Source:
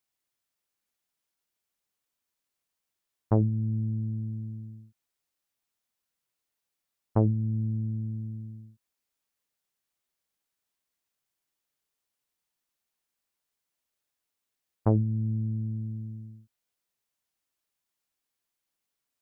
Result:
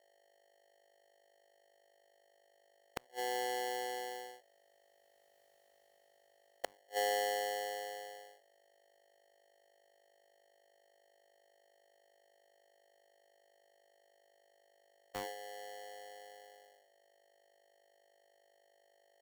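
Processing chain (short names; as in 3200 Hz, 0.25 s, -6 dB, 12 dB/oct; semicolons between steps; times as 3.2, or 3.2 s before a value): Doppler pass-by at 5.49, 36 m/s, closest 17 m; flipped gate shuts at -30 dBFS, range -41 dB; hum 50 Hz, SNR 24 dB; polarity switched at an audio rate 620 Hz; gain +5.5 dB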